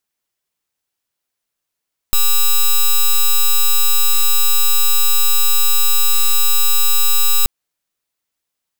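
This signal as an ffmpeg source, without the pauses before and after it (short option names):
-f lavfi -i "aevalsrc='0.282*(2*lt(mod(3900*t,1),0.05)-1)':d=5.33:s=44100"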